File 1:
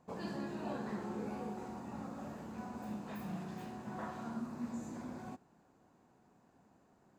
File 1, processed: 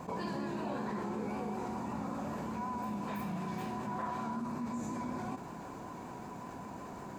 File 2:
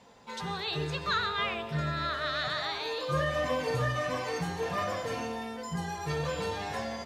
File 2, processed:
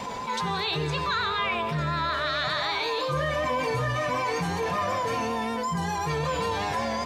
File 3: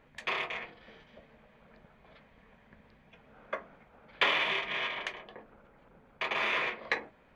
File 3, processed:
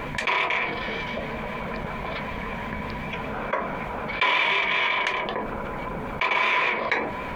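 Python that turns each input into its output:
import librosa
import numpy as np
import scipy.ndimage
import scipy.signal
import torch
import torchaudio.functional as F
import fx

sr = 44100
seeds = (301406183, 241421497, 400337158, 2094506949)

y = fx.small_body(x, sr, hz=(1000.0, 2300.0), ring_ms=95, db=14)
y = fx.vibrato(y, sr, rate_hz=5.3, depth_cents=35.0)
y = fx.env_flatten(y, sr, amount_pct=70)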